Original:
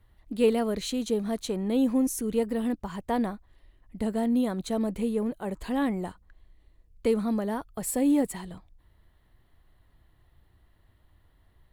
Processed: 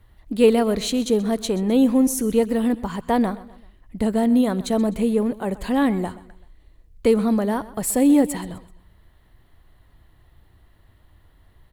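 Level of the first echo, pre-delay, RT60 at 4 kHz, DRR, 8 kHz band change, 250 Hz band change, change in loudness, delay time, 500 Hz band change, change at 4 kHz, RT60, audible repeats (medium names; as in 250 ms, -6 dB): -18.0 dB, no reverb, no reverb, no reverb, +7.5 dB, +7.5 dB, +7.5 dB, 128 ms, +7.5 dB, +7.5 dB, no reverb, 3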